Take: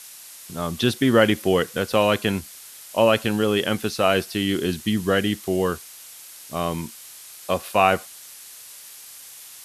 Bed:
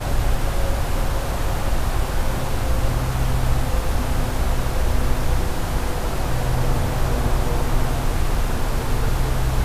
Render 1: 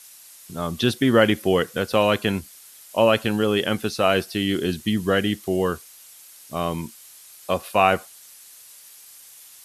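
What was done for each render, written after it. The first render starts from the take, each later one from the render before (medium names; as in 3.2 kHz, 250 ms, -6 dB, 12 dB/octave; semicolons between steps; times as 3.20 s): noise reduction 6 dB, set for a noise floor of -43 dBFS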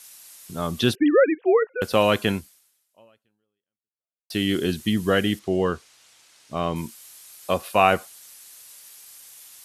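0.95–1.82 s: formants replaced by sine waves; 2.32–4.30 s: fade out exponential; 5.39–6.76 s: distance through air 88 m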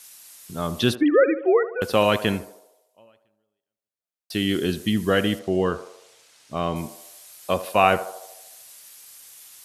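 band-passed feedback delay 76 ms, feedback 62%, band-pass 680 Hz, level -12 dB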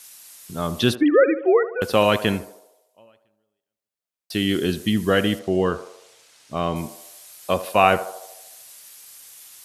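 trim +1.5 dB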